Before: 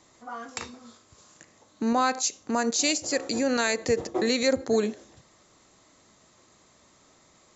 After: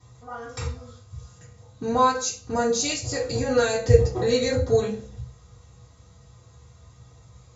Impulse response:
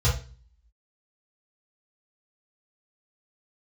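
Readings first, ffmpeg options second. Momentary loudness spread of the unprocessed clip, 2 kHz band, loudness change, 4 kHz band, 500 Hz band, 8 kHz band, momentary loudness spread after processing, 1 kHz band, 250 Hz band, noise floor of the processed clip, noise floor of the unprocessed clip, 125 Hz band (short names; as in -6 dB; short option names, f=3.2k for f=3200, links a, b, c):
14 LU, -2.0 dB, +2.5 dB, -1.0 dB, +5.0 dB, n/a, 21 LU, +4.0 dB, -2.0 dB, -53 dBFS, -60 dBFS, +18.5 dB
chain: -filter_complex "[1:a]atrim=start_sample=2205[a];[0:a][a]afir=irnorm=-1:irlink=0,volume=-11.5dB"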